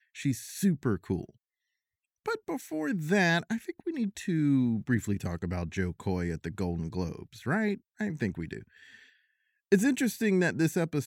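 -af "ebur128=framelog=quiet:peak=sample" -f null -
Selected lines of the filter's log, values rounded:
Integrated loudness:
  I:         -30.4 LUFS
  Threshold: -40.8 LUFS
Loudness range:
  LRA:         4.4 LU
  Threshold: -51.5 LUFS
  LRA low:   -34.0 LUFS
  LRA high:  -29.6 LUFS
Sample peak:
  Peak:      -10.4 dBFS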